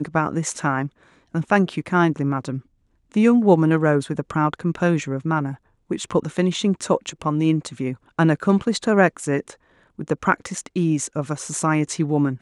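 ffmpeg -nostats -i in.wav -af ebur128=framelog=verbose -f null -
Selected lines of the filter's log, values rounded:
Integrated loudness:
  I:         -21.5 LUFS
  Threshold: -31.8 LUFS
Loudness range:
  LRA:         3.3 LU
  Threshold: -41.6 LUFS
  LRA low:   -23.3 LUFS
  LRA high:  -20.0 LUFS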